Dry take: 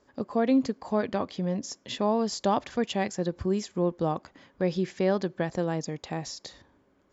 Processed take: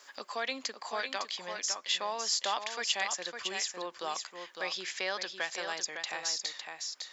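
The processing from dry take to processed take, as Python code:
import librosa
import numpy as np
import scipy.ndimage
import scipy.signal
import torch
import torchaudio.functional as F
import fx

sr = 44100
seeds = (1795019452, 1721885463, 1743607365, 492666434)

y = scipy.signal.sosfilt(scipy.signal.bessel(2, 2100.0, 'highpass', norm='mag', fs=sr, output='sos'), x)
y = y + 10.0 ** (-8.0 / 20.0) * np.pad(y, (int(556 * sr / 1000.0), 0))[:len(y)]
y = fx.band_squash(y, sr, depth_pct=40)
y = F.gain(torch.from_numpy(y), 7.5).numpy()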